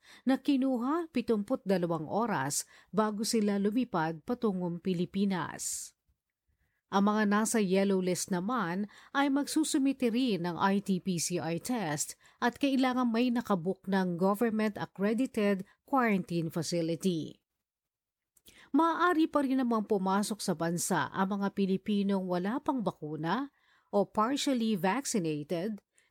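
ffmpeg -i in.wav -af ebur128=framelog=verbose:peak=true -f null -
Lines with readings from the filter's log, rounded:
Integrated loudness:
  I:         -30.9 LUFS
  Threshold: -41.1 LUFS
Loudness range:
  LRA:         2.6 LU
  Threshold: -51.3 LUFS
  LRA low:   -32.7 LUFS
  LRA high:  -30.0 LUFS
True peak:
  Peak:      -14.2 dBFS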